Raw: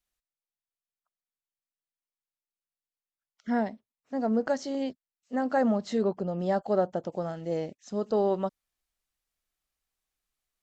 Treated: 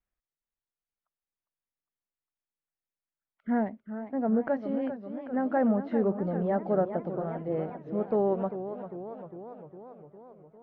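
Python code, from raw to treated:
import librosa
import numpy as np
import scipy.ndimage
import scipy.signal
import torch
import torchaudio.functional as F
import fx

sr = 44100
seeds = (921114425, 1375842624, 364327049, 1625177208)

y = scipy.signal.sosfilt(scipy.signal.butter(4, 2300.0, 'lowpass', fs=sr, output='sos'), x)
y = fx.low_shelf(y, sr, hz=430.0, db=5.0)
y = fx.echo_warbled(y, sr, ms=401, feedback_pct=66, rate_hz=2.8, cents=168, wet_db=-10.5)
y = y * librosa.db_to_amplitude(-3.0)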